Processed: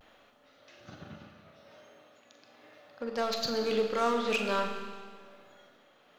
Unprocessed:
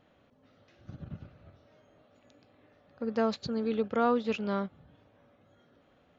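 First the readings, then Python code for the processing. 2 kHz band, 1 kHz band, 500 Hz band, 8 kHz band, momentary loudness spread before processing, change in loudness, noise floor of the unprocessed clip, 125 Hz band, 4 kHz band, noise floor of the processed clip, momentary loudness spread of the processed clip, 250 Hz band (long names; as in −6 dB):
+6.0 dB, +1.5 dB, +0.5 dB, can't be measured, 19 LU, +0.5 dB, −66 dBFS, −5.5 dB, +9.0 dB, −62 dBFS, 21 LU, −5.0 dB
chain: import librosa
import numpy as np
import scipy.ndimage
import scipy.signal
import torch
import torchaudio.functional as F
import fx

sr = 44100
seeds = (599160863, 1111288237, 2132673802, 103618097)

p1 = fx.highpass(x, sr, hz=840.0, slope=6)
p2 = fx.high_shelf(p1, sr, hz=5500.0, db=4.5)
p3 = 10.0 ** (-34.5 / 20.0) * (np.abs((p2 / 10.0 ** (-34.5 / 20.0) + 3.0) % 4.0 - 2.0) - 1.0)
p4 = p2 + (p3 * 10.0 ** (-4.5 / 20.0))
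p5 = fx.vibrato(p4, sr, rate_hz=0.42, depth_cents=30.0)
p6 = p5 * (1.0 - 0.43 / 2.0 + 0.43 / 2.0 * np.cos(2.0 * np.pi * 1.1 * (np.arange(len(p5)) / sr)))
p7 = fx.doubler(p6, sr, ms=43.0, db=-10.5)
p8 = fx.rev_schroeder(p7, sr, rt60_s=1.8, comb_ms=26, drr_db=4.5)
y = p8 * 10.0 ** (5.5 / 20.0)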